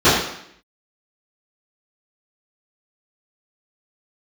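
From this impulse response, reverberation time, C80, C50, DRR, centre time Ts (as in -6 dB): 0.70 s, 5.0 dB, 2.0 dB, -18.5 dB, 58 ms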